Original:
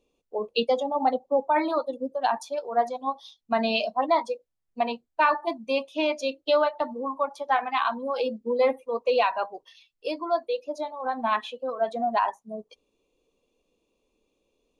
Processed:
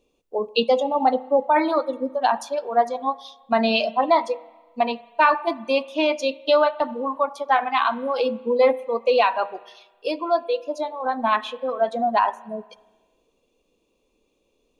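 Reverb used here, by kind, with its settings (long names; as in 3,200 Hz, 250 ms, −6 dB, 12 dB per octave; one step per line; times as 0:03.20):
spring reverb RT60 1.3 s, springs 31/35 ms, chirp 60 ms, DRR 18.5 dB
level +4.5 dB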